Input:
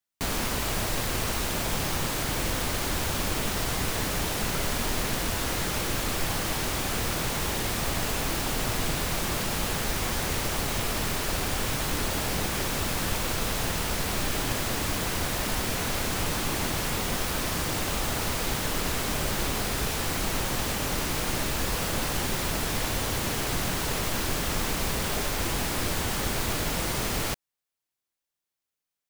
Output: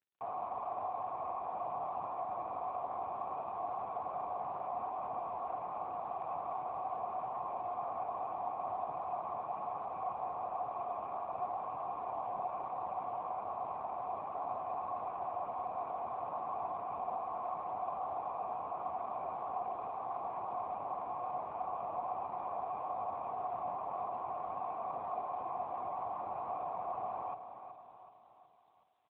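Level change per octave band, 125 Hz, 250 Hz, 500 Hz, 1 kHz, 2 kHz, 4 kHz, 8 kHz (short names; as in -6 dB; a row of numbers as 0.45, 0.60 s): -28.0 dB, -23.5 dB, -8.0 dB, -1.5 dB, -29.5 dB, under -40 dB, under -40 dB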